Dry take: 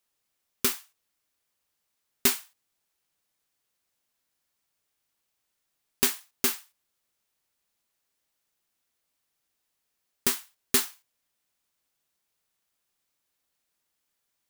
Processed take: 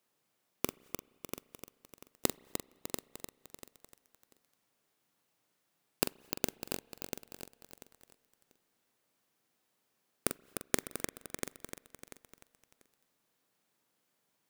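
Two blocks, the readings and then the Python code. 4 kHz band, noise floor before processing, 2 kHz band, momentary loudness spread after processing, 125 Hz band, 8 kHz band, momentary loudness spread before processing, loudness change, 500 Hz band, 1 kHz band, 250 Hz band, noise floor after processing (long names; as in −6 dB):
−10.5 dB, −80 dBFS, −8.5 dB, 19 LU, 0.0 dB, −9.5 dB, 10 LU, −13.0 dB, −2.0 dB, −4.0 dB, −3.5 dB, −80 dBFS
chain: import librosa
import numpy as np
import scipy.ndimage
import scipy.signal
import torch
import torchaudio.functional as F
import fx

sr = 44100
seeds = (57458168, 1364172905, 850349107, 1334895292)

p1 = scipy.signal.sosfilt(scipy.signal.bessel(6, 190.0, 'highpass', norm='mag', fs=sr, output='sos'), x)
p2 = fx.high_shelf(p1, sr, hz=8700.0, db=6.5)
p3 = fx.gate_flip(p2, sr, shuts_db=-20.0, range_db=-35)
p4 = fx.tilt_eq(p3, sr, slope=-3.0)
p5 = fx.doubler(p4, sr, ms=44.0, db=-8.5)
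p6 = p5 + fx.echo_feedback(p5, sr, ms=690, feedback_pct=24, wet_db=-8.0, dry=0)
p7 = fx.rev_spring(p6, sr, rt60_s=3.1, pass_ms=(31, 43), chirp_ms=25, drr_db=17.5)
p8 = np.where(np.abs(p7) >= 10.0 ** (-45.0 / 20.0), p7, 0.0)
p9 = p7 + (p8 * librosa.db_to_amplitude(-3.0))
p10 = fx.echo_crushed(p9, sr, ms=301, feedback_pct=55, bits=8, wet_db=-7.0)
y = p10 * librosa.db_to_amplitude(4.0)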